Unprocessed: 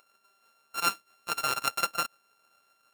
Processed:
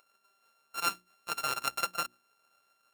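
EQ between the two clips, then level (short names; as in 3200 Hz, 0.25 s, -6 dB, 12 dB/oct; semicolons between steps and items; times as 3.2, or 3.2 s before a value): notches 60/120/180/240/300/360 Hz; -3.5 dB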